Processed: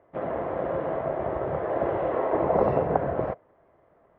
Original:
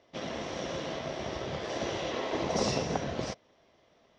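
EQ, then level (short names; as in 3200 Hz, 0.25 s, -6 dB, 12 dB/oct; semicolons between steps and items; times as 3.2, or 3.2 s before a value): LPF 1600 Hz 24 dB/oct; dynamic EQ 620 Hz, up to +5 dB, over -45 dBFS, Q 0.89; bell 230 Hz -6.5 dB 0.46 oct; +5.0 dB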